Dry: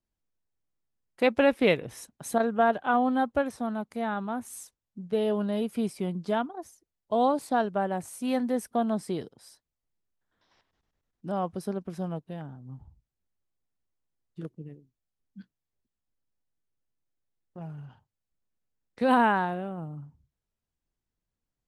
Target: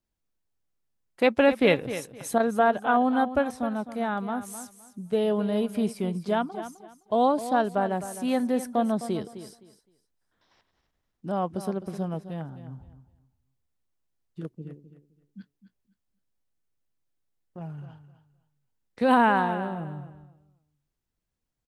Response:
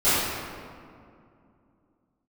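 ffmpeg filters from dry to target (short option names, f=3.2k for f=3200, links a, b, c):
-af "aecho=1:1:258|516|774:0.237|0.0522|0.0115,volume=2dB"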